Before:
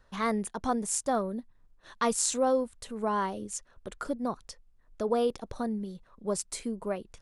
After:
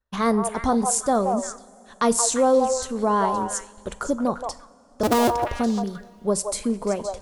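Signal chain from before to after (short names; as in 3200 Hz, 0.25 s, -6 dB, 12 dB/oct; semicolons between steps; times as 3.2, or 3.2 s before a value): 5.03–5.49 cycle switcher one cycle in 2, inverted; bell 62 Hz +9 dB 0.28 oct; on a send: delay with a stepping band-pass 0.173 s, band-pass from 770 Hz, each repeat 1.4 oct, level -2.5 dB; on the sum: dynamic EQ 2300 Hz, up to -6 dB, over -47 dBFS, Q 0.94; in parallel at -2.5 dB: limiter -21.5 dBFS, peak gain reduction 11.5 dB; on the sum: expander -39 dBFS; two-slope reverb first 0.43 s, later 3.5 s, from -16 dB, DRR 14.5 dB; gain +4 dB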